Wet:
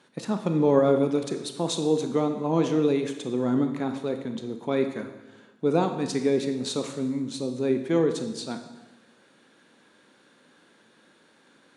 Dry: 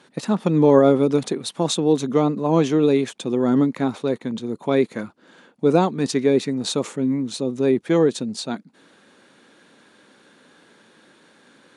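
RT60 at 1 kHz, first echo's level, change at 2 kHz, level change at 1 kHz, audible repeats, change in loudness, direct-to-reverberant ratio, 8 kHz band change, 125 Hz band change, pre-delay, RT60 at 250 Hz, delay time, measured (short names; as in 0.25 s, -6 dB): 1.1 s, none, -5.5 dB, -5.5 dB, none, -5.5 dB, 6.5 dB, -5.5 dB, -6.0 dB, 23 ms, 1.2 s, none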